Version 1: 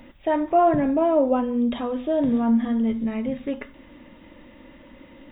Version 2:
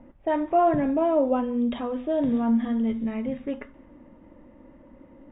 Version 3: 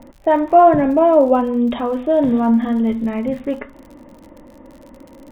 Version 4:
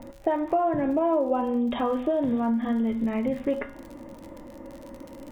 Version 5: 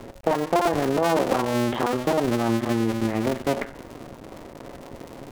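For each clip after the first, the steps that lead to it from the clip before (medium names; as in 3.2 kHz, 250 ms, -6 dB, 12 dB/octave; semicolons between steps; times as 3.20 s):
level-controlled noise filter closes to 920 Hz, open at -15.5 dBFS; trim -2.5 dB
peaking EQ 840 Hz +4.5 dB 2.1 oct; crackle 69 per s -40 dBFS; trim +6.5 dB
compression 6:1, threshold -21 dBFS, peak gain reduction 14 dB; feedback comb 110 Hz, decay 0.78 s, harmonics odd, mix 70%; trim +8.5 dB
cycle switcher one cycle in 2, muted; loudspeaker Doppler distortion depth 0.15 ms; trim +5 dB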